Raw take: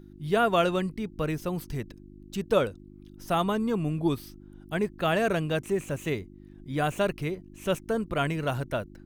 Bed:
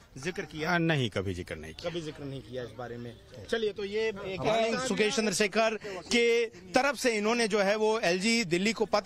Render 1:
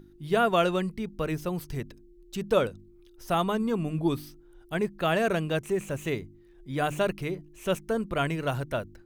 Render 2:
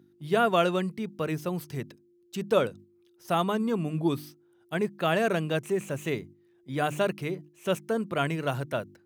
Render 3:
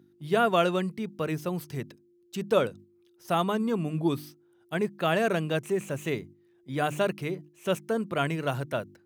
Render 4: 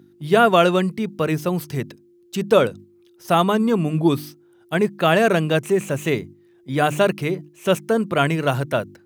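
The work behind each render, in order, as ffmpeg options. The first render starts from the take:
-af "bandreject=f=50:t=h:w=4,bandreject=f=100:t=h:w=4,bandreject=f=150:t=h:w=4,bandreject=f=200:t=h:w=4,bandreject=f=250:t=h:w=4,bandreject=f=300:t=h:w=4"
-af "agate=range=0.501:threshold=0.00562:ratio=16:detection=peak,highpass=f=110:w=0.5412,highpass=f=110:w=1.3066"
-af anull
-af "volume=2.82,alimiter=limit=0.708:level=0:latency=1"

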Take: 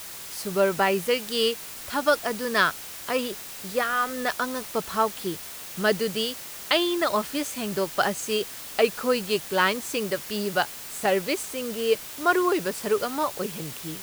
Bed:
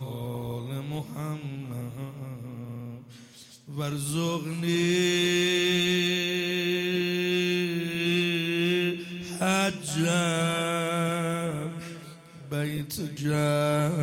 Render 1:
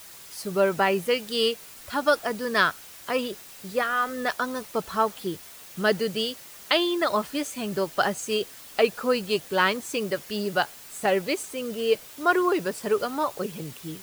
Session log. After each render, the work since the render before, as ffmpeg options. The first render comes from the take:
-af "afftdn=nr=7:nf=-39"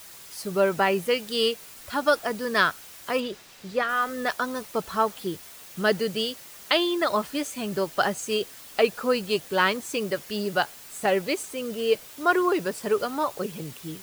-filter_complex "[0:a]asettb=1/sr,asplit=3[s0][s1][s2];[s0]atrim=end=3.204[s3];[s1]atrim=start=3.2:end=3.89,asetpts=PTS-STARTPTS,afade=t=in:d=0.004:c=qsin,afade=t=out:st=0.686:d=0.004:c=qsin,acrossover=split=6300[s4][s5];[s5]acompressor=threshold=0.002:ratio=4:attack=1:release=60[s6];[s4][s6]amix=inputs=2:normalize=0[s7];[s2]atrim=start=3.886[s8];[s3][s7]acrossfade=d=0.004:c1=hsin:c2=qsin[s9];[s9][s8]acrossfade=d=0.004:c1=qsin:c2=hsin"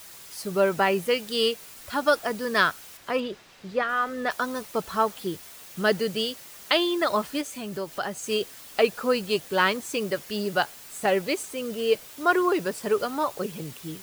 -filter_complex "[0:a]asettb=1/sr,asplit=3[s0][s1][s2];[s0]atrim=end=2.974[s3];[s1]atrim=start=2.97:end=4.31,asetpts=PTS-STARTPTS,afade=t=in:d=0.004:c=qsin,afade=t=out:st=1.336:d=0.004:c=qsin,highshelf=f=5800:g=-11[s4];[s2]atrim=start=4.306[s5];[s3][s4]acrossfade=d=0.004:c1=hsin:c2=qsin[s6];[s6][s5]acrossfade=d=0.004:c1=qsin:c2=hsin,asettb=1/sr,asplit=3[s7][s8][s9];[s7]atrim=end=7.414[s10];[s8]atrim=start=7.41:end=8.24,asetpts=PTS-STARTPTS,afade=t=in:d=0.004:c=qsin,afade=t=out:st=0.826:d=0.004:c=qsin,acompressor=threshold=0.0141:ratio=1.5:attack=3.2:release=140:knee=1:detection=peak[s11];[s9]atrim=start=8.236[s12];[s10][s11]acrossfade=d=0.004:c1=hsin:c2=qsin[s13];[s13][s12]acrossfade=d=0.004:c1=qsin:c2=hsin"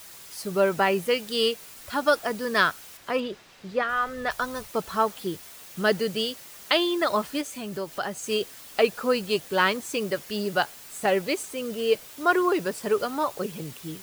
-filter_complex "[0:a]asplit=3[s0][s1][s2];[s0]afade=t=out:st=3.89:d=0.02[s3];[s1]asubboost=boost=9:cutoff=85,afade=t=in:st=3.89:d=0.02,afade=t=out:st=4.68:d=0.02[s4];[s2]afade=t=in:st=4.68:d=0.02[s5];[s3][s4][s5]amix=inputs=3:normalize=0"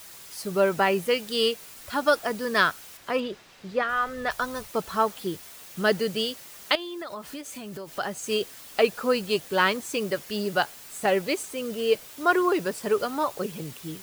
-filter_complex "[0:a]asettb=1/sr,asplit=3[s0][s1][s2];[s0]atrim=end=6.754[s3];[s1]atrim=start=6.75:end=7.89,asetpts=PTS-STARTPTS,afade=t=in:d=0.004:c=qsin,afade=t=out:st=1.136:d=0.004:c=qsin,acompressor=threshold=0.02:ratio=5:attack=3.2:release=140:knee=1:detection=peak[s4];[s2]atrim=start=7.886[s5];[s3][s4]acrossfade=d=0.004:c1=hsin:c2=qsin[s6];[s6][s5]acrossfade=d=0.004:c1=qsin:c2=hsin"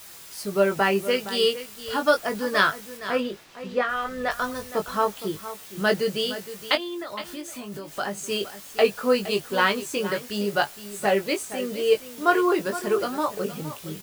-filter_complex "[0:a]asplit=2[s0][s1];[s1]adelay=20,volume=0.531[s2];[s0][s2]amix=inputs=2:normalize=0,aecho=1:1:465:0.211"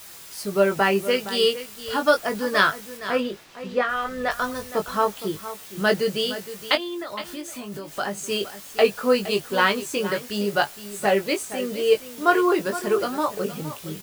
-af "volume=1.19"

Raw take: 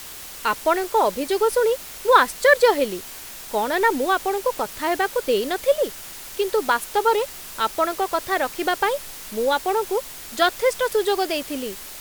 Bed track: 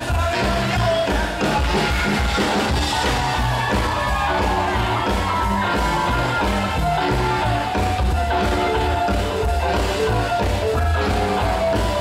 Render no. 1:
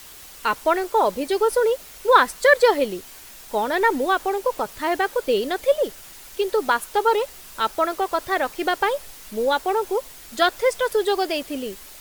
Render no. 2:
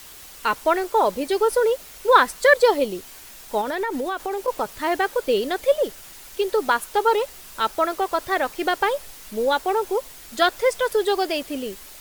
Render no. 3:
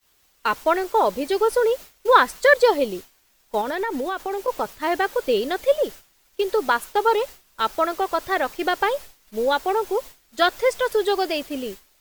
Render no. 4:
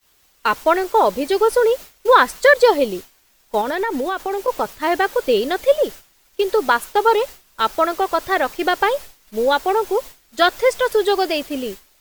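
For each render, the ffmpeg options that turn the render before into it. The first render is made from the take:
-af "afftdn=nr=6:nf=-38"
-filter_complex "[0:a]asettb=1/sr,asplit=3[s0][s1][s2];[s0]atrim=end=2.544[s3];[s1]atrim=start=2.54:end=2.95,asetpts=PTS-STARTPTS,afade=t=in:d=0.004:c=qsin,afade=t=out:st=0.406:d=0.004:c=qsin,equalizer=f=1800:w=2:g=-6.5[s4];[s2]atrim=start=2.946[s5];[s3][s4]acrossfade=d=0.004:c1=hsin:c2=qsin[s6];[s6][s5]acrossfade=d=0.004:c1=qsin:c2=hsin,asettb=1/sr,asplit=3[s7][s8][s9];[s7]atrim=end=3.614[s10];[s8]atrim=start=3.61:end=4.48,asetpts=PTS-STARTPTS,afade=t=in:d=0.004:c=qsin,afade=t=out:st=0.866:d=0.004:c=qsin,acompressor=threshold=0.0794:ratio=6:attack=3.2:release=140:knee=1:detection=peak[s11];[s9]atrim=start=4.476[s12];[s10][s11]acrossfade=d=0.004:c1=hsin:c2=qsin[s13];[s13][s12]acrossfade=d=0.004:c1=qsin:c2=hsin"
-af "agate=range=0.0224:threshold=0.0316:ratio=3:detection=peak,equalizer=f=10000:t=o:w=0.59:g=-4"
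-af "volume=1.58,alimiter=limit=0.794:level=0:latency=1"

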